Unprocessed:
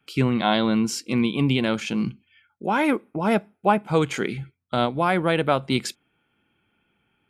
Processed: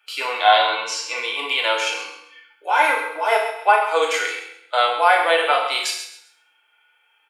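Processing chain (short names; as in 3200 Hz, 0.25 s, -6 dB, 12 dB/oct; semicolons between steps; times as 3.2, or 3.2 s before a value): 0.68–1.13 LPF 7700 Hz -> 3900 Hz 12 dB/oct; feedback echo 0.132 s, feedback 28%, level -12 dB; FDN reverb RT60 0.62 s, low-frequency decay 1.05×, high-frequency decay 0.85×, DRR -0.5 dB; harmonic-percussive split harmonic +9 dB; Bessel high-pass 890 Hz, order 8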